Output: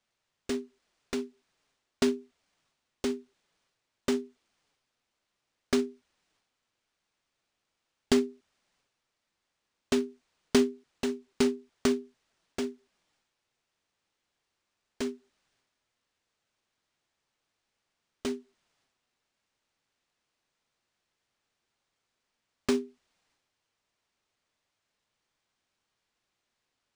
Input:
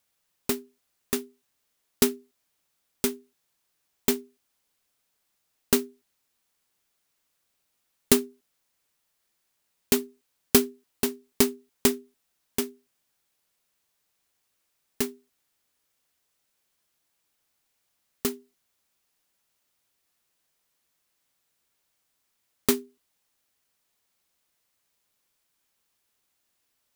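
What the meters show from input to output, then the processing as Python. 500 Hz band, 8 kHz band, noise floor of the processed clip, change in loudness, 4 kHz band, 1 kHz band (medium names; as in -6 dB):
-1.5 dB, -12.0 dB, -83 dBFS, -5.0 dB, -5.5 dB, -3.0 dB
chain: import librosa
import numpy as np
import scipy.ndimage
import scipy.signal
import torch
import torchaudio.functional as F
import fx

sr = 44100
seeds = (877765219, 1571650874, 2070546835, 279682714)

y = fx.high_shelf(x, sr, hz=2500.0, db=-3.0)
y = fx.transient(y, sr, attack_db=-3, sustain_db=6)
y = fx.env_flanger(y, sr, rest_ms=8.6, full_db=-27.0)
y = np.interp(np.arange(len(y)), np.arange(len(y))[::3], y[::3])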